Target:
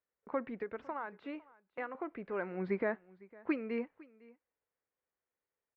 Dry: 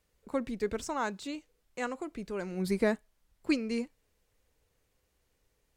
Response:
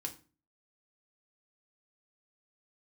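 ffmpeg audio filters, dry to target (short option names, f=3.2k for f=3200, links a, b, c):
-filter_complex "[0:a]highpass=f=300:p=1,agate=range=-16dB:threshold=-60dB:ratio=16:detection=peak,lowpass=f=2k:w=0.5412,lowpass=f=2k:w=1.3066,lowshelf=f=460:g=-7,asettb=1/sr,asplit=3[a][b][c];[a]atrim=end=0.564[d];[b]atrim=start=0.56:end=1.95,asetpts=PTS-STARTPTS,afade=t=in:d=0.004:c=qsin,afade=t=out:st=1.386:d=0.004:c=qsin,acompressor=threshold=-41dB:ratio=10[e];[c]atrim=start=1.946[f];[d][e]acrossfade=d=0.004:c1=hsin:c2=qsin[g];[g][f]acrossfade=d=0.004:c1=qsin:c2=hsin,alimiter=level_in=3.5dB:limit=-24dB:level=0:latency=1:release=238,volume=-3.5dB,aecho=1:1:505:0.075,volume=4.5dB"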